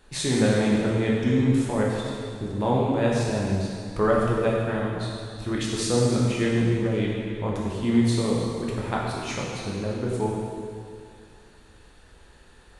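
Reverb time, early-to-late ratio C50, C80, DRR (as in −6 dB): 2.3 s, −1.0 dB, 1.0 dB, −4.5 dB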